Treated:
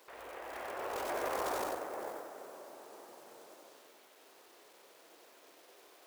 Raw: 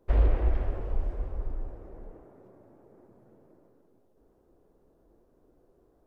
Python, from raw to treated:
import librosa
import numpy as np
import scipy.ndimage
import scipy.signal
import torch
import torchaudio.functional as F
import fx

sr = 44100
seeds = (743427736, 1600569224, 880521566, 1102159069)

p1 = fx.law_mismatch(x, sr, coded='A')
p2 = scipy.signal.sosfilt(scipy.signal.butter(2, 820.0, 'highpass', fs=sr, output='sos'), p1)
p3 = fx.over_compress(p2, sr, threshold_db=-57.0, ratio=-1.0)
p4 = p3 + fx.echo_single(p3, sr, ms=93, db=-3.5, dry=0)
y = F.gain(torch.from_numpy(p4), 15.0).numpy()